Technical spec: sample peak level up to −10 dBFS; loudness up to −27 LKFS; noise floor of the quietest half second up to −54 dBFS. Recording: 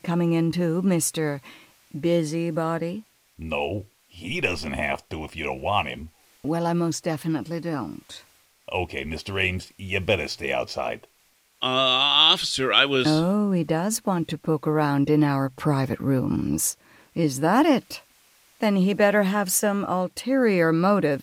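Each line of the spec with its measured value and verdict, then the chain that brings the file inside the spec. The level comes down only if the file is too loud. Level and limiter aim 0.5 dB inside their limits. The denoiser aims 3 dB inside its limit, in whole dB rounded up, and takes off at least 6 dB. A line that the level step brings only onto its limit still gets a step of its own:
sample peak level −3.5 dBFS: out of spec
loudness −23.0 LKFS: out of spec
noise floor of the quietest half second −63 dBFS: in spec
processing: level −4.5 dB
brickwall limiter −10.5 dBFS

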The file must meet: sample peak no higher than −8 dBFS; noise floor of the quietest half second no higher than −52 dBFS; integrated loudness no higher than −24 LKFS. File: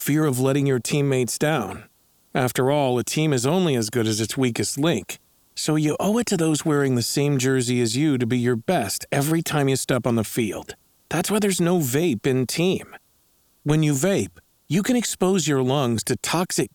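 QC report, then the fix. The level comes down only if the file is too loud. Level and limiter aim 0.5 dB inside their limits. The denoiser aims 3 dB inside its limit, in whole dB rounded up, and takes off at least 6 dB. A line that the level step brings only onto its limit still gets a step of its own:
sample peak −5.5 dBFS: out of spec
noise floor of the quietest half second −62 dBFS: in spec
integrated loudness −22.0 LKFS: out of spec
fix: level −2.5 dB
brickwall limiter −8.5 dBFS

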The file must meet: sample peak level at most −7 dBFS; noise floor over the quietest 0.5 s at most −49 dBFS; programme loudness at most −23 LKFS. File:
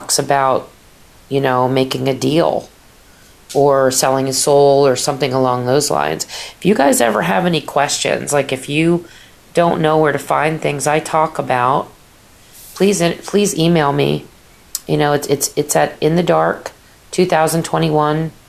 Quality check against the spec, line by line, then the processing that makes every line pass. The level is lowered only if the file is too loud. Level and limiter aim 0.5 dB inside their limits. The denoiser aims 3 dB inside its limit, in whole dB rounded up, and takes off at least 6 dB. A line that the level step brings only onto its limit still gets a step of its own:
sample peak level −1.5 dBFS: out of spec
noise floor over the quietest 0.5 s −45 dBFS: out of spec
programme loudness −15.0 LKFS: out of spec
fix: level −8.5 dB

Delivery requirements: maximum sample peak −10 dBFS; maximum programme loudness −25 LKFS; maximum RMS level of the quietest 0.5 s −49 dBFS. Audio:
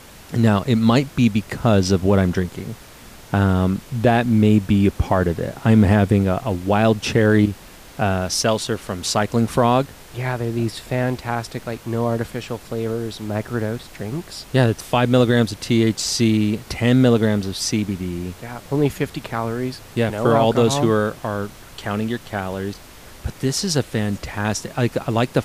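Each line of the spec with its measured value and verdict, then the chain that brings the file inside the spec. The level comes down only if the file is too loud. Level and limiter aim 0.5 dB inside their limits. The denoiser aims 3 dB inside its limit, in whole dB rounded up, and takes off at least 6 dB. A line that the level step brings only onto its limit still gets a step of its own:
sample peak −4.5 dBFS: out of spec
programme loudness −20.0 LKFS: out of spec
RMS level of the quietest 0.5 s −42 dBFS: out of spec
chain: broadband denoise 6 dB, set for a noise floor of −42 dBFS
level −5.5 dB
brickwall limiter −10.5 dBFS

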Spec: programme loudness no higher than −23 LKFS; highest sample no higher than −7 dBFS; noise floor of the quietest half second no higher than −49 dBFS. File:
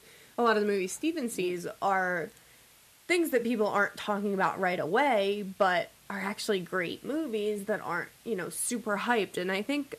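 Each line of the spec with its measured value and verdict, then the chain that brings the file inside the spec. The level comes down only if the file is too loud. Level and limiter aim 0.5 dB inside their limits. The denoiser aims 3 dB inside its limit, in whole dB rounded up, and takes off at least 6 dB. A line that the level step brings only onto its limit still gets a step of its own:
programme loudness −30.0 LKFS: in spec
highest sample −13.0 dBFS: in spec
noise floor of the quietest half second −59 dBFS: in spec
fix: no processing needed

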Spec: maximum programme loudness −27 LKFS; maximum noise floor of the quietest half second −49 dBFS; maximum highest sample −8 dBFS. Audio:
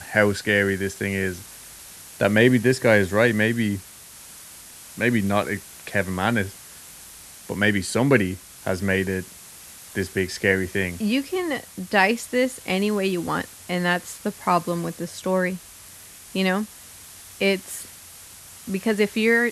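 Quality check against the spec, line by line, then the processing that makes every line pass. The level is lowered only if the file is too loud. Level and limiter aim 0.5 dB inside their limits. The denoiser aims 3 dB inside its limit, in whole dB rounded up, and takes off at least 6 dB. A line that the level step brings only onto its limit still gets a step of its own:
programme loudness −23.0 LKFS: out of spec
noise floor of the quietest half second −44 dBFS: out of spec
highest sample −2.5 dBFS: out of spec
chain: broadband denoise 6 dB, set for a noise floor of −44 dBFS
level −4.5 dB
brickwall limiter −8.5 dBFS

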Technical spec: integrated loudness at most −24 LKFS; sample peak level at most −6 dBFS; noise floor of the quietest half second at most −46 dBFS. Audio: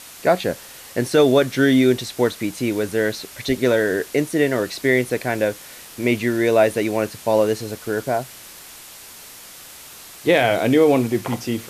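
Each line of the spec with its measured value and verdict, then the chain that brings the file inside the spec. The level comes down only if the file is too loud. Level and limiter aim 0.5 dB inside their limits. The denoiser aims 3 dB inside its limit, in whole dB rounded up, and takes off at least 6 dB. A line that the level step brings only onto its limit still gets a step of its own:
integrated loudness −20.0 LKFS: out of spec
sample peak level −5.5 dBFS: out of spec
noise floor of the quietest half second −41 dBFS: out of spec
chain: broadband denoise 6 dB, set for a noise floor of −41 dBFS
level −4.5 dB

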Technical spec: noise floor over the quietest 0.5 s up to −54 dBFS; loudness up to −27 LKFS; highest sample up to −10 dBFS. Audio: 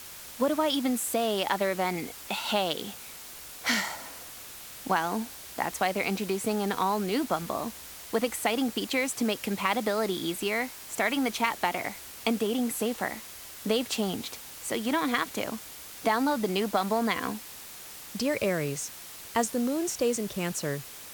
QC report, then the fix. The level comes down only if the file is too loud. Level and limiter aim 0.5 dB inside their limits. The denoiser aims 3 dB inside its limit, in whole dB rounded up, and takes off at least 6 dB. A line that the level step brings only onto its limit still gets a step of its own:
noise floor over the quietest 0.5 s −44 dBFS: out of spec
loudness −29.5 LKFS: in spec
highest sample −11.0 dBFS: in spec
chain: broadband denoise 13 dB, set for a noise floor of −44 dBFS

